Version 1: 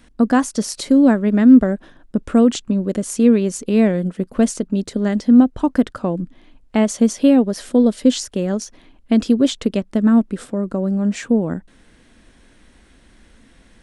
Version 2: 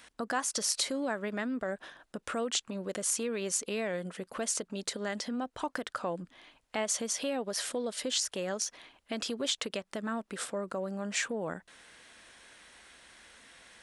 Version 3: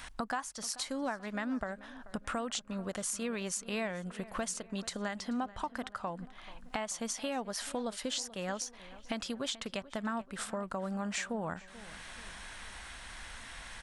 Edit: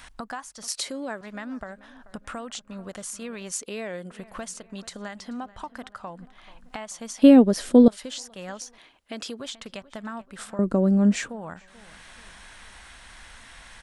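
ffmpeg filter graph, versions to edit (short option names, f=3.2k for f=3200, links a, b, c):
-filter_complex "[1:a]asplit=3[a][b][c];[0:a]asplit=2[d][e];[2:a]asplit=6[f][g][h][i][j][k];[f]atrim=end=0.682[l];[a]atrim=start=0.678:end=1.212[m];[g]atrim=start=1.208:end=3.522[n];[b]atrim=start=3.518:end=4.112[o];[h]atrim=start=4.108:end=7.222[p];[d]atrim=start=7.218:end=7.882[q];[i]atrim=start=7.878:end=8.782[r];[c]atrim=start=8.778:end=9.402[s];[j]atrim=start=9.398:end=10.592[t];[e]atrim=start=10.588:end=11.292[u];[k]atrim=start=11.288[v];[l][m]acrossfade=d=0.004:c1=hsin:c2=hsin[w];[w][n]acrossfade=d=0.004:c1=hsin:c2=hsin[x];[x][o]acrossfade=d=0.004:c1=hsin:c2=hsin[y];[y][p]acrossfade=d=0.004:c1=hsin:c2=hsin[z];[z][q]acrossfade=d=0.004:c1=hsin:c2=hsin[aa];[aa][r]acrossfade=d=0.004:c1=hsin:c2=hsin[ab];[ab][s]acrossfade=d=0.004:c1=hsin:c2=hsin[ac];[ac][t]acrossfade=d=0.004:c1=hsin:c2=hsin[ad];[ad][u]acrossfade=d=0.004:c1=hsin:c2=hsin[ae];[ae][v]acrossfade=d=0.004:c1=hsin:c2=hsin"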